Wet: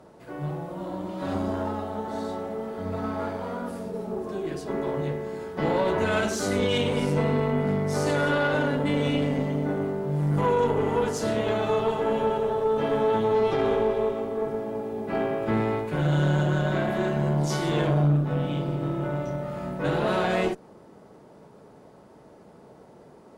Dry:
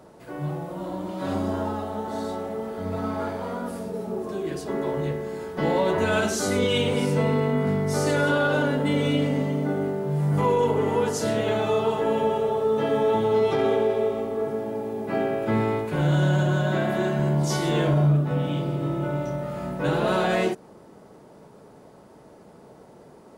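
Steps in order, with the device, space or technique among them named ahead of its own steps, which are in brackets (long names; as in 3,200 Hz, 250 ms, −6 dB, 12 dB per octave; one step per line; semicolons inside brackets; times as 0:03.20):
tube preamp driven hard (tube saturation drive 15 dB, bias 0.6; high-shelf EQ 6,700 Hz −5.5 dB)
level +1.5 dB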